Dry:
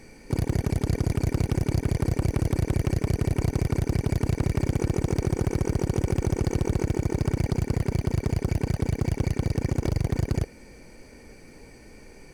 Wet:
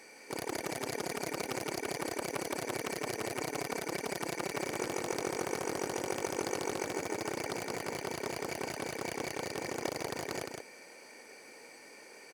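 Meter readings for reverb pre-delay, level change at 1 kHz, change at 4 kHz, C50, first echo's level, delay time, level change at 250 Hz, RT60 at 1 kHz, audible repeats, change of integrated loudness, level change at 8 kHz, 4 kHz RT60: no reverb, +0.5 dB, +1.5 dB, no reverb, -4.5 dB, 164 ms, -12.0 dB, no reverb, 1, -10.0 dB, +1.5 dB, no reverb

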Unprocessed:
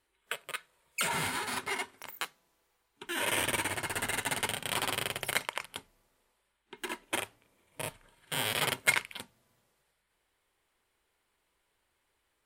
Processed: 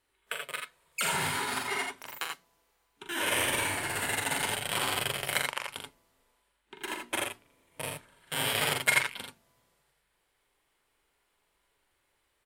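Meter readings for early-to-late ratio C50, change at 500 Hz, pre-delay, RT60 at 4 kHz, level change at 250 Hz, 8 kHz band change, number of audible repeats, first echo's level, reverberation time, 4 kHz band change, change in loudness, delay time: no reverb, +2.5 dB, no reverb, no reverb, +1.5 dB, +2.5 dB, 2, -5.5 dB, no reverb, +2.5 dB, +2.5 dB, 42 ms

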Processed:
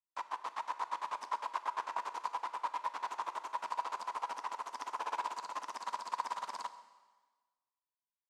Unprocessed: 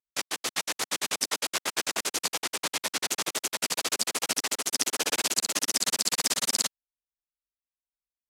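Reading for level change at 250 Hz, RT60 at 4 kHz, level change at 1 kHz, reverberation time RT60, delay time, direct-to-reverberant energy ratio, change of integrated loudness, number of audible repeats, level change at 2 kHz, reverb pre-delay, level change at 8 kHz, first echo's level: -21.0 dB, 1.3 s, +2.5 dB, 1.4 s, 137 ms, 11.0 dB, -12.5 dB, 1, -14.0 dB, 3 ms, -29.5 dB, -21.0 dB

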